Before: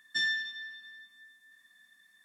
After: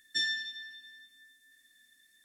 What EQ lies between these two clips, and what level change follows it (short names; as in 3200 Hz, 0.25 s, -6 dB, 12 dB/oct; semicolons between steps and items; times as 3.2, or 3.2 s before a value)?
tone controls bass +12 dB, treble +5 dB; fixed phaser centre 410 Hz, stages 4; 0.0 dB